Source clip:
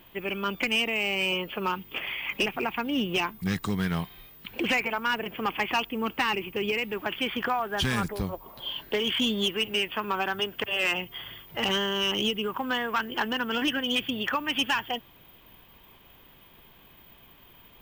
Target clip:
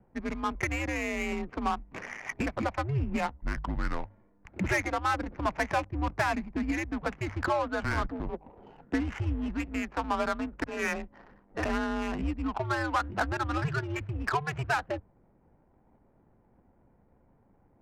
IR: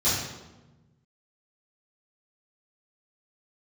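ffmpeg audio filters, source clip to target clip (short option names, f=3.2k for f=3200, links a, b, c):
-af "highpass=f=160:t=q:w=0.5412,highpass=f=160:t=q:w=1.307,lowpass=f=2.3k:t=q:w=0.5176,lowpass=f=2.3k:t=q:w=0.7071,lowpass=f=2.3k:t=q:w=1.932,afreqshift=-150,bandreject=f=50:t=h:w=6,bandreject=f=100:t=h:w=6,bandreject=f=150:t=h:w=6,adynamicsmooth=sensitivity=4.5:basefreq=530"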